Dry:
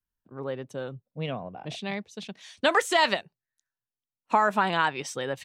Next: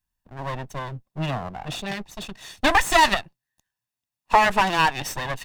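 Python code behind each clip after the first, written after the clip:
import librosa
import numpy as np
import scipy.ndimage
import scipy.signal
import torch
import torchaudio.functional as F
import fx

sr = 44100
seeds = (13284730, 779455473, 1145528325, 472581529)

y = fx.lower_of_two(x, sr, delay_ms=1.1)
y = y * librosa.db_to_amplitude(7.5)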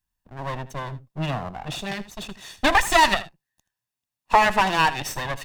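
y = x + 10.0 ** (-16.0 / 20.0) * np.pad(x, (int(79 * sr / 1000.0), 0))[:len(x)]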